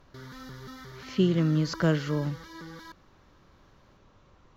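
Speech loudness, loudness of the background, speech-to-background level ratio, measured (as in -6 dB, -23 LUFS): -27.0 LUFS, -44.5 LUFS, 17.5 dB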